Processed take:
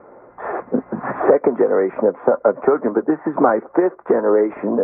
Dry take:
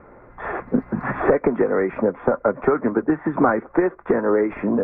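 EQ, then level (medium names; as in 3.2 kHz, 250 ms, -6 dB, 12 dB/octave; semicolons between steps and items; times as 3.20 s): band-pass filter 600 Hz, Q 0.87; distance through air 79 m; +5.5 dB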